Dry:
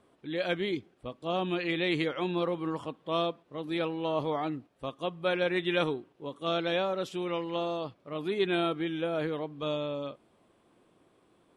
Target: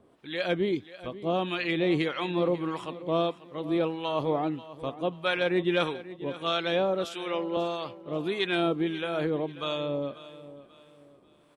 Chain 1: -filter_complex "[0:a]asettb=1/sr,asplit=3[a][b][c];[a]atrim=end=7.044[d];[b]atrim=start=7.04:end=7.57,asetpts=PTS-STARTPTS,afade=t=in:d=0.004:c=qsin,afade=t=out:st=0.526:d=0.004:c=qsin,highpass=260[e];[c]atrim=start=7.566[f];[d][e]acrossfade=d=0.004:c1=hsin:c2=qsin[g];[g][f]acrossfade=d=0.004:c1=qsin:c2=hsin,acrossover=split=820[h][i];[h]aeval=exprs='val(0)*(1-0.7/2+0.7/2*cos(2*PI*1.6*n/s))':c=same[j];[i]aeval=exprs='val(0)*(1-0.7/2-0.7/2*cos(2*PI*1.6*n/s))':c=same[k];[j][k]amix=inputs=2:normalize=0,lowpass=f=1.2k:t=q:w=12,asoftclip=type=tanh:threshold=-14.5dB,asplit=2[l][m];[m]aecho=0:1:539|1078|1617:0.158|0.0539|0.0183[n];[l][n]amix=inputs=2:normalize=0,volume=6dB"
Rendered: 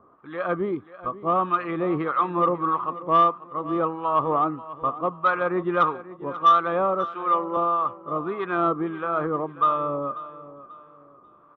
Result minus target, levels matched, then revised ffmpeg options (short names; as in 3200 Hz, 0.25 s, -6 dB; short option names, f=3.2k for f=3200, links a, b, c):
1000 Hz band +8.0 dB
-filter_complex "[0:a]asettb=1/sr,asplit=3[a][b][c];[a]atrim=end=7.044[d];[b]atrim=start=7.04:end=7.57,asetpts=PTS-STARTPTS,afade=t=in:d=0.004:c=qsin,afade=t=out:st=0.526:d=0.004:c=qsin,highpass=260[e];[c]atrim=start=7.566[f];[d][e]acrossfade=d=0.004:c1=hsin:c2=qsin[g];[g][f]acrossfade=d=0.004:c1=qsin:c2=hsin,acrossover=split=820[h][i];[h]aeval=exprs='val(0)*(1-0.7/2+0.7/2*cos(2*PI*1.6*n/s))':c=same[j];[i]aeval=exprs='val(0)*(1-0.7/2-0.7/2*cos(2*PI*1.6*n/s))':c=same[k];[j][k]amix=inputs=2:normalize=0,asoftclip=type=tanh:threshold=-14.5dB,asplit=2[l][m];[m]aecho=0:1:539|1078|1617:0.158|0.0539|0.0183[n];[l][n]amix=inputs=2:normalize=0,volume=6dB"